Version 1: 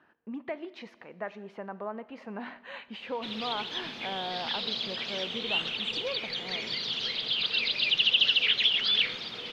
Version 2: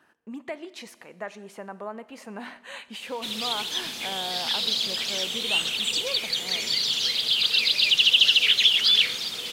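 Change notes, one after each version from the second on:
master: remove air absorption 280 m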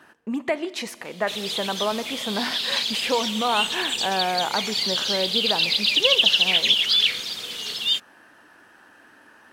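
speech +10.5 dB; background: entry -1.95 s

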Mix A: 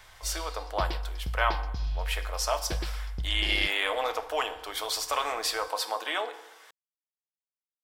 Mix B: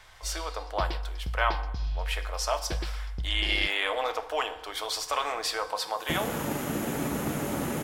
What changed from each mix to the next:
second sound: unmuted; master: add high shelf 12000 Hz -9.5 dB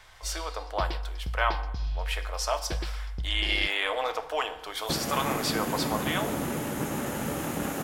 second sound: entry -1.20 s

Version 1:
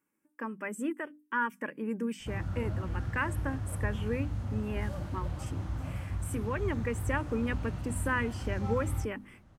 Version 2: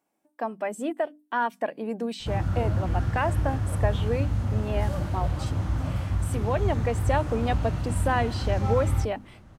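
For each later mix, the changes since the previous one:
speech: remove fixed phaser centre 1700 Hz, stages 4; background +8.5 dB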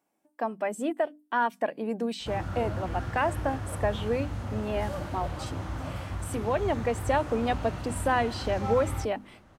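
background: add tone controls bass -9 dB, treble -2 dB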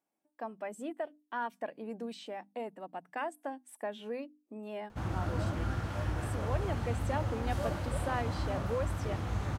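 speech -10.0 dB; background: entry +2.70 s

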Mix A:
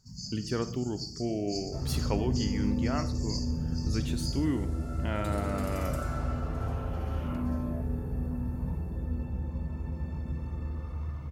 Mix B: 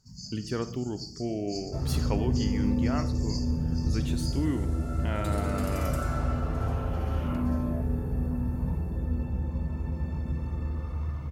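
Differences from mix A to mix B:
first sound: send off; second sound +3.5 dB

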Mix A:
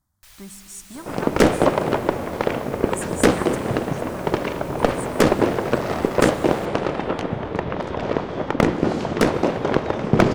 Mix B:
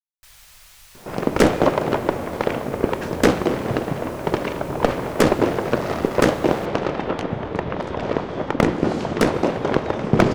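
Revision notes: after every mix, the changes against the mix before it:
speech: muted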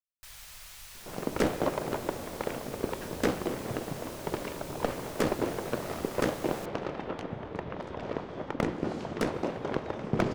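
second sound -12.0 dB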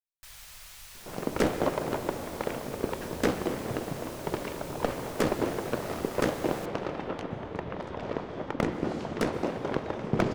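second sound: send +7.5 dB

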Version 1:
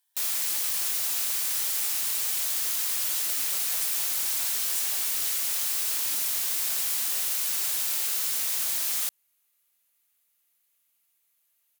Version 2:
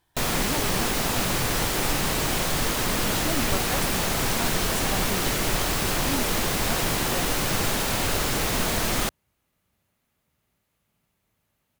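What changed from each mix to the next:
second sound -6.5 dB; master: remove differentiator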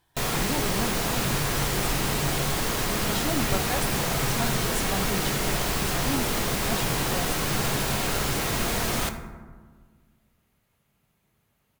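first sound -5.0 dB; reverb: on, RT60 1.5 s

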